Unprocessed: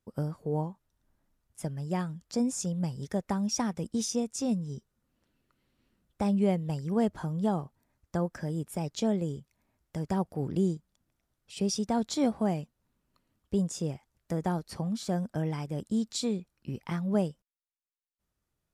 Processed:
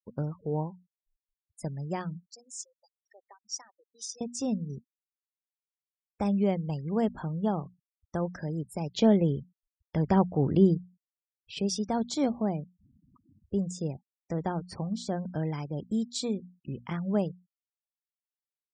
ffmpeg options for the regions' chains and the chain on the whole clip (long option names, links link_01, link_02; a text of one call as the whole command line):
ffmpeg -i in.wav -filter_complex "[0:a]asettb=1/sr,asplit=3[link_01][link_02][link_03];[link_01]atrim=end=2.274[link_04];[link_02]atrim=start=2.27:end=4.21,asetpts=PTS-STARTPTS,afade=type=in:duration=0.004:curve=qsin,afade=type=out:start_time=1.936:duration=0.004:curve=qsin,highpass=frequency=270:width=0.5412,highpass=frequency=270:width=1.3066,aderivative,adynamicsmooth=sensitivity=6.5:basefreq=6100[link_05];[link_03]atrim=start=4.206[link_06];[link_04][link_05]acrossfade=duration=0.004:curve1=hsin:curve2=qsin[link_07];[link_07][link_06]acrossfade=duration=0.004:curve1=qsin:curve2=hsin,asettb=1/sr,asplit=3[link_08][link_09][link_10];[link_08]atrim=end=8.944[link_11];[link_09]atrim=start=8.94:end=11.59,asetpts=PTS-STARTPTS,afade=type=in:duration=0.004:curve=qsin,afade=type=out:start_time=2.646:duration=0.004:curve=qsin,lowpass=4200,acontrast=80[link_12];[link_10]atrim=start=11.586[link_13];[link_11][link_12]acrossfade=duration=0.004:curve1=hsin:curve2=qsin[link_14];[link_14][link_13]acrossfade=duration=0.004:curve1=qsin:curve2=hsin,asettb=1/sr,asplit=3[link_15][link_16][link_17];[link_15]atrim=end=12.294[link_18];[link_16]atrim=start=12.29:end=13.81,asetpts=PTS-STARTPTS,afade=type=in:duration=0.004:curve=qsin,afade=type=out:start_time=1.516:duration=0.004:curve=qsin,highpass=61,equalizer=frequency=2700:width=0.36:gain=-4.5,acompressor=mode=upward:threshold=-42dB:ratio=2.5:attack=3.2:release=140:knee=2.83:detection=peak[link_19];[link_17]atrim=start=13.806[link_20];[link_18][link_19]acrossfade=duration=0.004:curve1=hsin:curve2=qsin[link_21];[link_21][link_20]acrossfade=duration=0.004:curve1=qsin:curve2=hsin,lowpass=9400,bandreject=frequency=60:width_type=h:width=6,bandreject=frequency=120:width_type=h:width=6,bandreject=frequency=180:width_type=h:width=6,bandreject=frequency=240:width_type=h:width=6,afftfilt=real='re*gte(hypot(re,im),0.00501)':imag='im*gte(hypot(re,im),0.00501)':win_size=1024:overlap=0.75" out.wav